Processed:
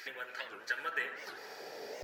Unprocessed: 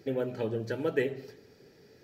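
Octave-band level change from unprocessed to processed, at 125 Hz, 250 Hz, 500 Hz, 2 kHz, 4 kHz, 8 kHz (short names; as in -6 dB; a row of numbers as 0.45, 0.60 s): under -30 dB, -22.5 dB, -15.0 dB, +5.5 dB, +4.0 dB, n/a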